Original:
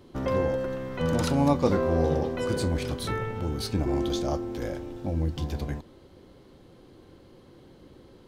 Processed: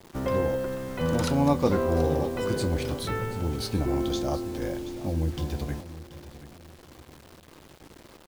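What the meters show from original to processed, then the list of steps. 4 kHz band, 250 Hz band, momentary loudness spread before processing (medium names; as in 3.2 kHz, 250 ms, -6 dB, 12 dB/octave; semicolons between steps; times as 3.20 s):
+0.5 dB, 0.0 dB, 10 LU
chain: bit crusher 8-bit; feedback delay 730 ms, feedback 35%, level -15 dB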